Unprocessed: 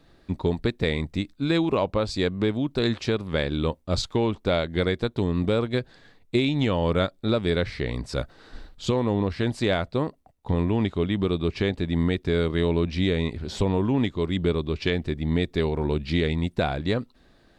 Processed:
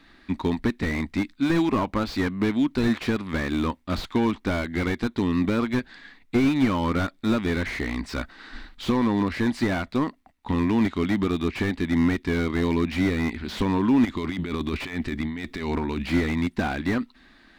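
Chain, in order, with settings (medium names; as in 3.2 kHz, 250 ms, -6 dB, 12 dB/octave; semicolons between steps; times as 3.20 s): ten-band graphic EQ 125 Hz -11 dB, 250 Hz +10 dB, 500 Hz -9 dB, 1 kHz +5 dB, 2 kHz +11 dB, 4 kHz +4 dB; 14.05–16.06 s: compressor with a negative ratio -28 dBFS, ratio -1; slew-rate limiter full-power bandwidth 71 Hz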